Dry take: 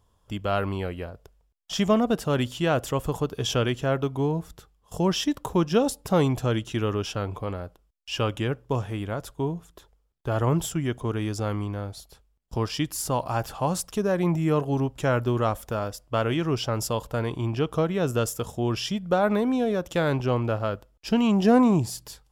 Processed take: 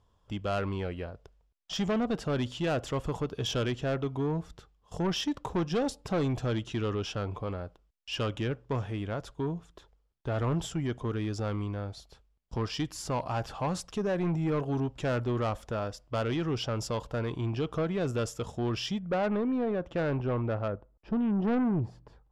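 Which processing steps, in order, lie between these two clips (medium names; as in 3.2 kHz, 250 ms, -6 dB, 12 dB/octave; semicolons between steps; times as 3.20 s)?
low-pass 5.7 kHz 12 dB/octave, from 18.99 s 2 kHz, from 20.68 s 1.1 kHz; saturation -21 dBFS, distortion -11 dB; trim -2.5 dB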